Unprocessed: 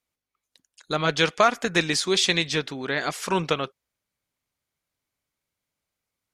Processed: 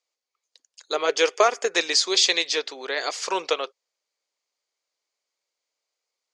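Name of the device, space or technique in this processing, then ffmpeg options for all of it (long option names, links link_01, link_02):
phone speaker on a table: -filter_complex "[0:a]highpass=frequency=400:width=0.5412,highpass=frequency=400:width=1.3066,equalizer=frequency=490:width_type=q:width=4:gain=3,equalizer=frequency=1500:width_type=q:width=4:gain=-4,equalizer=frequency=4700:width_type=q:width=4:gain=8,equalizer=frequency=6600:width_type=q:width=4:gain=6,lowpass=frequency=7900:width=0.5412,lowpass=frequency=7900:width=1.3066,asettb=1/sr,asplit=3[link_01][link_02][link_03];[link_01]atrim=end=0.944[link_04];[link_02]atrim=start=0.94:end=1.72,asetpts=PTS-STARTPTS,afade=type=in:duration=0.004:curve=qsin,afade=type=out:start_time=0.776:duration=0.004:curve=qsin,equalizer=frequency=400:width_type=o:width=0.33:gain=10,equalizer=frequency=4000:width_type=o:width=0.33:gain=-9,equalizer=frequency=10000:width_type=o:width=0.33:gain=6[link_05];[link_03]atrim=start=1.716[link_06];[link_04][link_05]acrossfade=duration=0.004:curve1=hsin:curve2=qsin[link_07];[link_07][link_06]acrossfade=duration=0.004:curve1=qsin:curve2=hsin"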